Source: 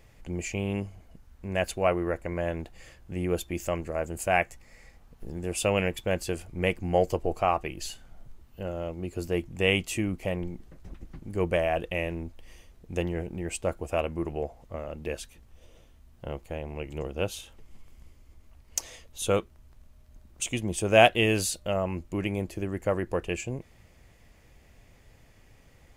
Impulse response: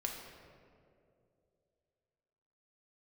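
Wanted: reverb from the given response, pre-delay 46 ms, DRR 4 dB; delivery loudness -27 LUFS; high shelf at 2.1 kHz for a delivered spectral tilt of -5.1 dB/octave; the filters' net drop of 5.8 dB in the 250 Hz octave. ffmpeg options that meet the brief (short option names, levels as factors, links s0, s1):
-filter_complex "[0:a]equalizer=f=250:t=o:g=-9,highshelf=f=2100:g=-6.5,asplit=2[s0][s1];[1:a]atrim=start_sample=2205,adelay=46[s2];[s1][s2]afir=irnorm=-1:irlink=0,volume=0.562[s3];[s0][s3]amix=inputs=2:normalize=0,volume=1.58"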